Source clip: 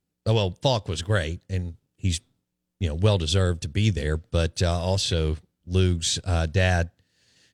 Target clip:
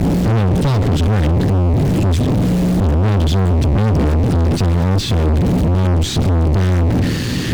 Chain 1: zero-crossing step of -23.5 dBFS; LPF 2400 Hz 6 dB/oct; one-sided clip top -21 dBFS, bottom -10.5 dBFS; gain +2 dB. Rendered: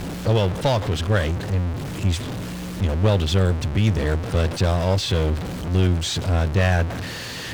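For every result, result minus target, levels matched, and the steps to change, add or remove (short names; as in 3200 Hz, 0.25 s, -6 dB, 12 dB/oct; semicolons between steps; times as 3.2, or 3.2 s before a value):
500 Hz band +4.0 dB; zero-crossing step: distortion -5 dB
add after LPF: resonant low shelf 420 Hz +12 dB, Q 1.5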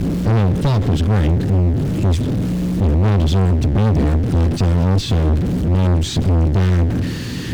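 zero-crossing step: distortion -5 dB
change: zero-crossing step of -16.5 dBFS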